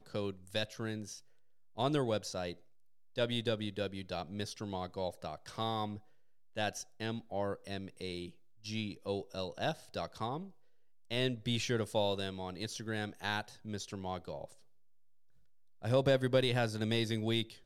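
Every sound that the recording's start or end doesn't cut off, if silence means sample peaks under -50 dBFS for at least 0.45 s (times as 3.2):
1.77–2.55
3.16–6
6.56–10.5
11.11–14.53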